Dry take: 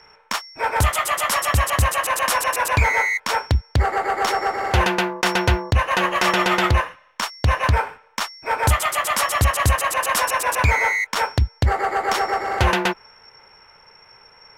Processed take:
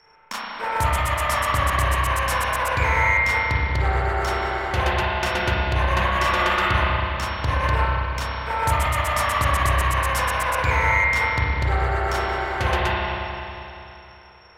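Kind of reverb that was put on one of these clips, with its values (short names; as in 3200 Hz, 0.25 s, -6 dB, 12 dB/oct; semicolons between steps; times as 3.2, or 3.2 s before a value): spring tank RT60 3.1 s, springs 31/40 ms, chirp 20 ms, DRR -5.5 dB; gain -7.5 dB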